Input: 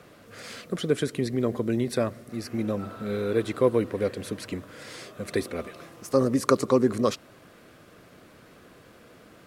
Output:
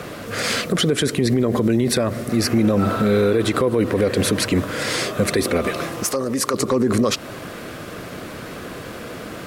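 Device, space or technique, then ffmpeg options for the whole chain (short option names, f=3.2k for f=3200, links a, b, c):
loud club master: -filter_complex "[0:a]acompressor=threshold=-27dB:ratio=2.5,asoftclip=type=hard:threshold=-17dB,alimiter=level_in=27.5dB:limit=-1dB:release=50:level=0:latency=1,asettb=1/sr,asplit=3[a][b][c];[a]atrim=end=6.044[d];[b]atrim=start=6.04:end=6.54,asetpts=PTS-STARTPTS,afade=t=in:d=0.004:c=qsin,afade=t=out:st=0.496:d=0.004:c=qsin,lowshelf=f=320:g=-10.5[e];[c]atrim=start=6.536[f];[d][e]acrossfade=d=0.004:c1=hsin:c2=qsin[g];[g][f]acrossfade=d=0.004:c1=qsin:c2=hsin,volume=-8.5dB"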